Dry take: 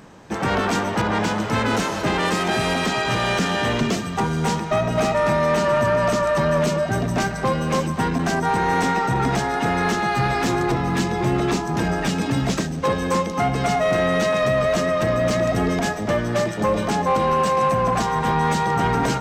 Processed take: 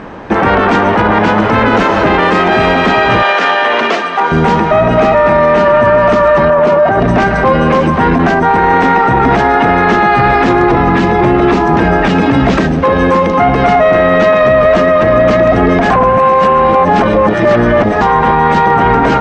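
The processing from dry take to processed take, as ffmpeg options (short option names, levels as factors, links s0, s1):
-filter_complex "[0:a]asettb=1/sr,asplit=3[s0][s1][s2];[s0]atrim=end=3.224[s3];[s1]atrim=start=3.22:end=4.32,asetpts=PTS-STARTPTS,afade=t=in:d=0.004:c=qsin,afade=t=out:st=1.096:d=0.004:c=qsin,highpass=590,lowpass=7800[s4];[s2]atrim=start=4.316[s5];[s3][s4]acrossfade=d=0.004:c1=hsin:c2=qsin[s6];[s6][s5]acrossfade=d=0.004:c1=qsin:c2=hsin,asettb=1/sr,asplit=3[s7][s8][s9];[s7]atrim=end=6.504[s10];[s8]atrim=start=6.5:end=7,asetpts=PTS-STARTPTS,afade=t=in:d=0.004:c=qsin,afade=t=out:st=0.496:d=0.004:c=qsin,equalizer=f=820:t=o:w=2.3:g=10.5[s11];[s9]atrim=start=6.996[s12];[s10][s11]acrossfade=d=0.004:c1=hsin:c2=qsin[s13];[s13][s12]acrossfade=d=0.004:c1=qsin:c2=hsin,asplit=3[s14][s15][s16];[s14]atrim=end=15.902[s17];[s15]atrim=start=15.898:end=18.012,asetpts=PTS-STARTPTS,areverse[s18];[s16]atrim=start=18.008[s19];[s17][s18]acrossfade=d=0.004:c1=hsin:c2=hsin[s20];[s20][s19]acrossfade=d=0.004:c1=hsin:c2=hsin,lowpass=2300,equalizer=f=140:w=1.6:g=-8,alimiter=level_in=10:limit=0.891:release=50:level=0:latency=1,volume=0.891"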